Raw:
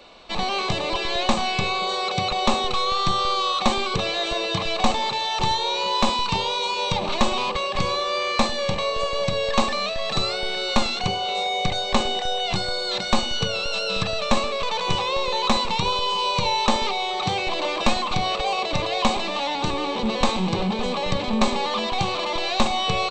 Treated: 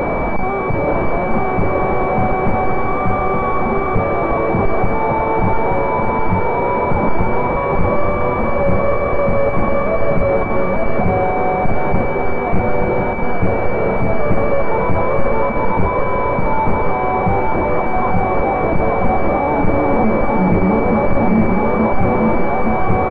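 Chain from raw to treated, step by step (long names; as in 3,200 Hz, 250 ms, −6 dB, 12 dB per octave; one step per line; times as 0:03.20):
sign of each sample alone
low-shelf EQ 350 Hz +9.5 dB
soft clipping −20.5 dBFS, distortion −13 dB
on a send: repeating echo 877 ms, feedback 45%, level −3 dB
on the sum: switching amplifier with a slow clock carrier 2,300 Hz
level +8.5 dB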